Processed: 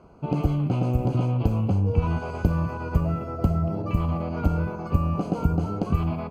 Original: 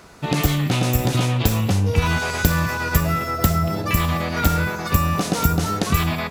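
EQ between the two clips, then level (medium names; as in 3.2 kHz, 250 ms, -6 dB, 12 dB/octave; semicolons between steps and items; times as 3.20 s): boxcar filter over 24 samples; -3.0 dB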